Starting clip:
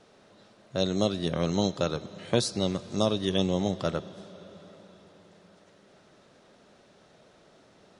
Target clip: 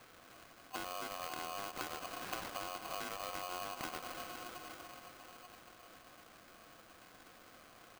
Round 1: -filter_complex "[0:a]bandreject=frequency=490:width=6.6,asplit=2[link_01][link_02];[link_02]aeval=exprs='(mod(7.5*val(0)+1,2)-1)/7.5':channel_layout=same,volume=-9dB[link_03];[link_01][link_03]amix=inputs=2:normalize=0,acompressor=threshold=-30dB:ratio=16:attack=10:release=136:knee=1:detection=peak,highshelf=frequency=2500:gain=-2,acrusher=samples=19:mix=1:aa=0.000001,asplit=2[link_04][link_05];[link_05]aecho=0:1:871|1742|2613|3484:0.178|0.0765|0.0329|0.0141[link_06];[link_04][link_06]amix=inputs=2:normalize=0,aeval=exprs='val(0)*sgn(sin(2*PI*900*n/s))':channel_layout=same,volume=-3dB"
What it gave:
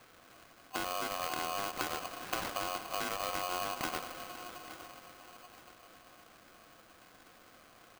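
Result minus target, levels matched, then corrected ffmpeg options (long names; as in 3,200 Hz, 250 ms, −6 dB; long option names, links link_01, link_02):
downward compressor: peak gain reduction −6.5 dB
-filter_complex "[0:a]bandreject=frequency=490:width=6.6,asplit=2[link_01][link_02];[link_02]aeval=exprs='(mod(7.5*val(0)+1,2)-1)/7.5':channel_layout=same,volume=-9dB[link_03];[link_01][link_03]amix=inputs=2:normalize=0,acompressor=threshold=-37dB:ratio=16:attack=10:release=136:knee=1:detection=peak,highshelf=frequency=2500:gain=-2,acrusher=samples=19:mix=1:aa=0.000001,asplit=2[link_04][link_05];[link_05]aecho=0:1:871|1742|2613|3484:0.178|0.0765|0.0329|0.0141[link_06];[link_04][link_06]amix=inputs=2:normalize=0,aeval=exprs='val(0)*sgn(sin(2*PI*900*n/s))':channel_layout=same,volume=-3dB"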